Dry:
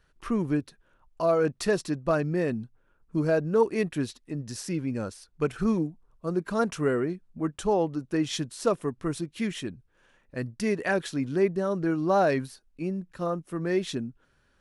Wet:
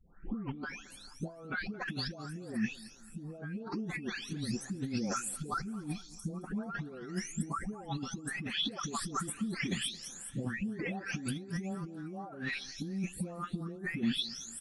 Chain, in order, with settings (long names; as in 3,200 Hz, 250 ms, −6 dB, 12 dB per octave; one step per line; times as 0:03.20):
every frequency bin delayed by itself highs late, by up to 687 ms
compressor whose output falls as the input rises −39 dBFS, ratio −1
hollow resonant body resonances 210/780/1,300/3,400 Hz, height 10 dB, ringing for 45 ms
on a send: repeating echo 220 ms, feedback 48%, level −20 dB
on the sum: level −3.5 dB